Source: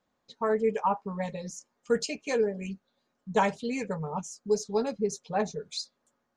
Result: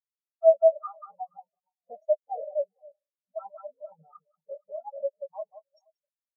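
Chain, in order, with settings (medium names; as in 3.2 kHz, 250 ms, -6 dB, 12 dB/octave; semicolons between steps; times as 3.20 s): CVSD coder 32 kbps; high-pass 78 Hz 6 dB/octave; multi-tap echo 41/91/184/369/470 ms -17/-14.5/-5.5/-19.5/-12.5 dB; in parallel at -4.5 dB: saturation -31 dBFS, distortion -7 dB; on the sum: modulation noise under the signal 32 dB; ten-band graphic EQ 125 Hz +9 dB, 250 Hz -6 dB, 500 Hz +12 dB, 1 kHz +6 dB, 2 kHz -9 dB; formant shift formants +5 st; peak limiter -11 dBFS, peak gain reduction 9.5 dB; treble shelf 3.7 kHz +11.5 dB; on a send: echo that smears into a reverb 468 ms, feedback 45%, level -13 dB; on the sum: reverb removal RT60 0.52 s; spectral contrast expander 4:1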